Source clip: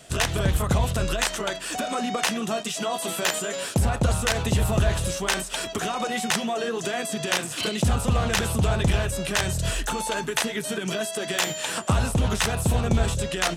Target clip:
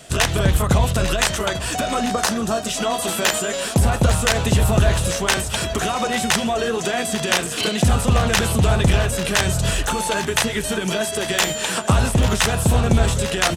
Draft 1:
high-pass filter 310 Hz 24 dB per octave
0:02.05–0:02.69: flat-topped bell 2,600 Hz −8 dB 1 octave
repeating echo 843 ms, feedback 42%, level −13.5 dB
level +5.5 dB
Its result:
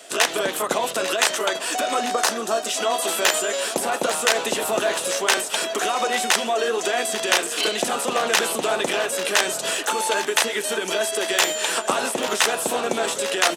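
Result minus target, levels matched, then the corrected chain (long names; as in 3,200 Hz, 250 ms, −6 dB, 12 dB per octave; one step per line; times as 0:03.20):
250 Hz band −7.5 dB
0:02.05–0:02.69: flat-topped bell 2,600 Hz −8 dB 1 octave
repeating echo 843 ms, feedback 42%, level −13.5 dB
level +5.5 dB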